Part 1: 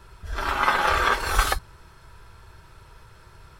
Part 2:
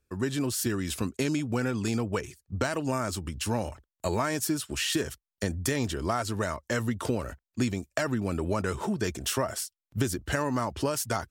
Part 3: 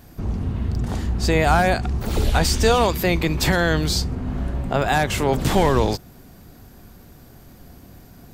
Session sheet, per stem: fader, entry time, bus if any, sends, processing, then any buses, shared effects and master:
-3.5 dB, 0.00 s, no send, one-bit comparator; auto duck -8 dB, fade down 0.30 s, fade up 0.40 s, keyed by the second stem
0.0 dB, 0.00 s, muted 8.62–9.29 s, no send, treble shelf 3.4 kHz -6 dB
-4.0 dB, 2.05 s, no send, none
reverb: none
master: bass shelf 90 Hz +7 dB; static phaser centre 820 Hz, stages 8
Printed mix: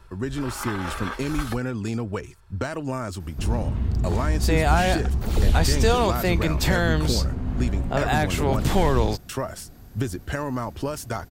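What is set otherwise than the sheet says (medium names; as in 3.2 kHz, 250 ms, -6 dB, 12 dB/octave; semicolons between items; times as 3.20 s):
stem 1: missing one-bit comparator; stem 3: entry 2.05 s -> 3.20 s; master: missing static phaser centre 820 Hz, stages 8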